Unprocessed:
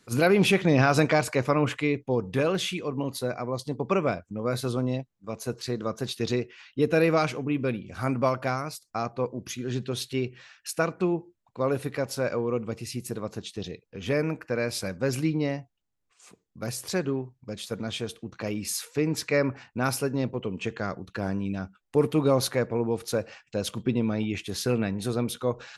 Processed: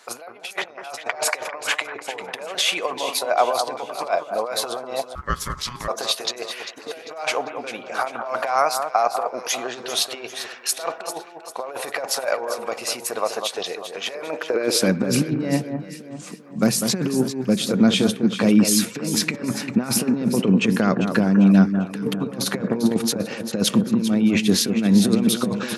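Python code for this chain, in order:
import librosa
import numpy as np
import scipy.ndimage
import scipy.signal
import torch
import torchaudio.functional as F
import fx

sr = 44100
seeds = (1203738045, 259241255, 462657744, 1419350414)

p1 = fx.over_compress(x, sr, threshold_db=-31.0, ratio=-0.5)
p2 = fx.filter_sweep_highpass(p1, sr, from_hz=710.0, to_hz=200.0, start_s=14.22, end_s=14.96, q=2.8)
p3 = p2 + fx.echo_alternate(p2, sr, ms=198, hz=1600.0, feedback_pct=65, wet_db=-7, dry=0)
p4 = fx.ring_mod(p3, sr, carrier_hz=610.0, at=(5.15, 5.88))
y = p4 * librosa.db_to_amplitude(7.5)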